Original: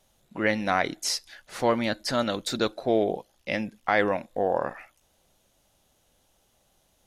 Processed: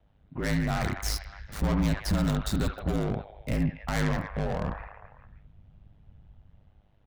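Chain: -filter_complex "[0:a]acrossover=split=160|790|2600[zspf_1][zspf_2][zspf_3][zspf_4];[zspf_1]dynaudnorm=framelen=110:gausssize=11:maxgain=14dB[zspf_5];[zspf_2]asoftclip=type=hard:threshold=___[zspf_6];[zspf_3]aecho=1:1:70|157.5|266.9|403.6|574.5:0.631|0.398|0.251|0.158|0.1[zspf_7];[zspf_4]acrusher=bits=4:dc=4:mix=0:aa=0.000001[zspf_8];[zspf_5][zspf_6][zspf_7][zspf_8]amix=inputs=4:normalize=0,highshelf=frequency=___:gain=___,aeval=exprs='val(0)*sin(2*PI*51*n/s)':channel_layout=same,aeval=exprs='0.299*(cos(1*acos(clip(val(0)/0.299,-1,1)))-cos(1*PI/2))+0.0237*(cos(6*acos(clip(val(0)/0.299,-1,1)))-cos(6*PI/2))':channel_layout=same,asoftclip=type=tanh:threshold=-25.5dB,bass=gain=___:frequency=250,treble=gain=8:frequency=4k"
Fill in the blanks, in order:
-29dB, 5k, -4, 10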